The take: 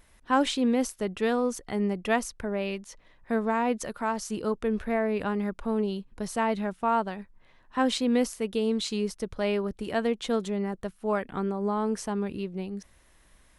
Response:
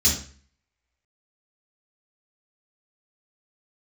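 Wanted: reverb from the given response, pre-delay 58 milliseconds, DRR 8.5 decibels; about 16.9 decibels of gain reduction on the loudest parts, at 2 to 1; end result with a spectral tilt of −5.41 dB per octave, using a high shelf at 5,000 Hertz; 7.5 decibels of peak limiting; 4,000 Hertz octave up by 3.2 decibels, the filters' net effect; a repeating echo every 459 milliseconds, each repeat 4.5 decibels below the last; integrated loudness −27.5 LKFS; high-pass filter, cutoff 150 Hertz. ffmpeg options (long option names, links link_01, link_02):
-filter_complex "[0:a]highpass=150,equalizer=frequency=4000:width_type=o:gain=7.5,highshelf=frequency=5000:gain=-8.5,acompressor=threshold=-52dB:ratio=2,alimiter=level_in=11.5dB:limit=-24dB:level=0:latency=1,volume=-11.5dB,aecho=1:1:459|918|1377|1836|2295|2754|3213|3672|4131:0.596|0.357|0.214|0.129|0.0772|0.0463|0.0278|0.0167|0.01,asplit=2[link_01][link_02];[1:a]atrim=start_sample=2205,adelay=58[link_03];[link_02][link_03]afir=irnorm=-1:irlink=0,volume=-21dB[link_04];[link_01][link_04]amix=inputs=2:normalize=0,volume=13.5dB"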